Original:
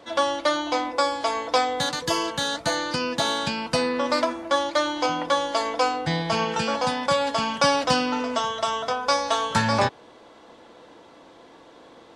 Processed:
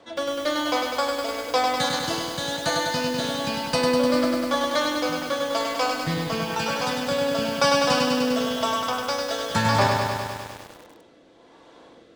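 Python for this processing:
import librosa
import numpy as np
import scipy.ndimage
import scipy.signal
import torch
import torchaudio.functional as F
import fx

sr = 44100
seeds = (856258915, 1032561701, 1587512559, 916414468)

y = fx.rotary(x, sr, hz=1.0)
y = fx.echo_crushed(y, sr, ms=100, feedback_pct=80, bits=7, wet_db=-3.5)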